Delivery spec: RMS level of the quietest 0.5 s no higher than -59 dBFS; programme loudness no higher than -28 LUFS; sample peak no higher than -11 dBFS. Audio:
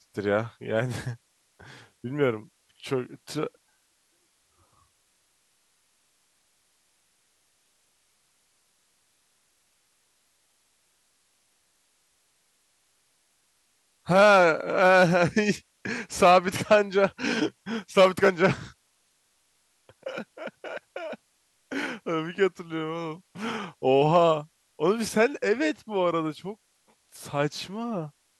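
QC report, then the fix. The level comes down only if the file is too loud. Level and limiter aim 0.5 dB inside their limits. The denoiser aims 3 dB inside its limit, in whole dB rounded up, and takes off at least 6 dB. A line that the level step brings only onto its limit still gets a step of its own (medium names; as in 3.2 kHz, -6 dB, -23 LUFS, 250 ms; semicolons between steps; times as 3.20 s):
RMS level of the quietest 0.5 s -69 dBFS: pass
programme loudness -25.0 LUFS: fail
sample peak -7.0 dBFS: fail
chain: trim -3.5 dB; peak limiter -11.5 dBFS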